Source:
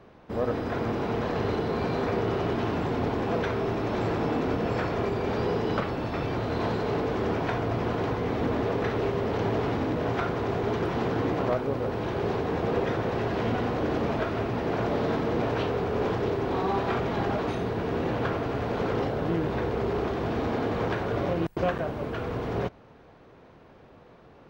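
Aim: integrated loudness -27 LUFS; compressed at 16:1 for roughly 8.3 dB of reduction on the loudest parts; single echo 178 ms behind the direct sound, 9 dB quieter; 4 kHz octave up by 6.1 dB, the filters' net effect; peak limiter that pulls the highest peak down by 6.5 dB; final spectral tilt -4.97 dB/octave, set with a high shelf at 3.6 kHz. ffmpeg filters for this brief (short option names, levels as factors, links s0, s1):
-af "highshelf=f=3600:g=7,equalizer=f=4000:t=o:g=3.5,acompressor=threshold=0.0282:ratio=16,alimiter=level_in=1.58:limit=0.0631:level=0:latency=1,volume=0.631,aecho=1:1:178:0.355,volume=2.99"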